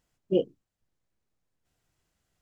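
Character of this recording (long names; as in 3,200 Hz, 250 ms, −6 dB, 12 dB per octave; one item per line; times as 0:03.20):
background noise floor −86 dBFS
spectral slope +4.0 dB per octave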